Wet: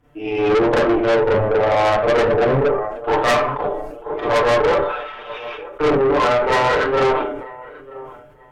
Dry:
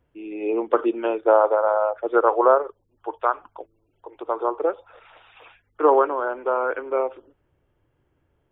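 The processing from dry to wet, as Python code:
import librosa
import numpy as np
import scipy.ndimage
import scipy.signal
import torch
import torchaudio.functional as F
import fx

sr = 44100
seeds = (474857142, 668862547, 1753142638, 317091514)

y = fx.self_delay(x, sr, depth_ms=0.35)
y = y + 0.75 * np.pad(y, (int(6.8 * sr / 1000.0), 0))[:len(y)]
y = np.clip(10.0 ** (11.0 / 20.0) * y, -1.0, 1.0) / 10.0 ** (11.0 / 20.0)
y = fx.env_lowpass_down(y, sr, base_hz=300.0, full_db=-14.0)
y = fx.rider(y, sr, range_db=5, speed_s=2.0)
y = fx.echo_feedback(y, sr, ms=940, feedback_pct=23, wet_db=-23.5)
y = fx.rev_schroeder(y, sr, rt60_s=0.32, comb_ms=29, drr_db=-8.5)
y = fx.tube_stage(y, sr, drive_db=20.0, bias=0.65)
y = fx.sustainer(y, sr, db_per_s=50.0)
y = y * librosa.db_to_amplitude(7.0)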